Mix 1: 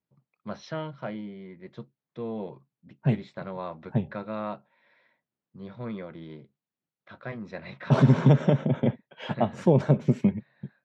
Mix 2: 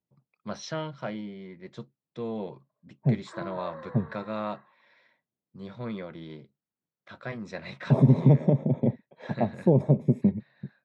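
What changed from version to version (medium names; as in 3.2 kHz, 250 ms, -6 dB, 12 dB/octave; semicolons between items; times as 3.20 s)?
second voice: add boxcar filter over 30 samples; background: unmuted; master: remove distance through air 180 m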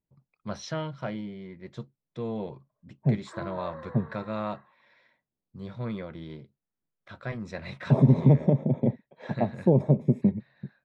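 first voice: remove band-pass 150–6900 Hz; master: add treble shelf 6.8 kHz -5 dB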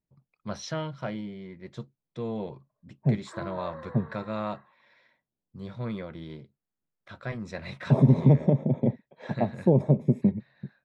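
master: add treble shelf 6.8 kHz +5 dB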